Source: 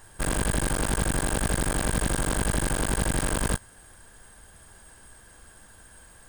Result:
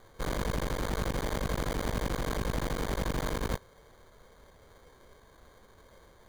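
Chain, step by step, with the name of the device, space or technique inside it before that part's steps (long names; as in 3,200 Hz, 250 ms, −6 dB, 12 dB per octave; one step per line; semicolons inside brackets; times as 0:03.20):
crushed at another speed (tape speed factor 0.5×; decimation without filtering 33×; tape speed factor 2×)
level −6 dB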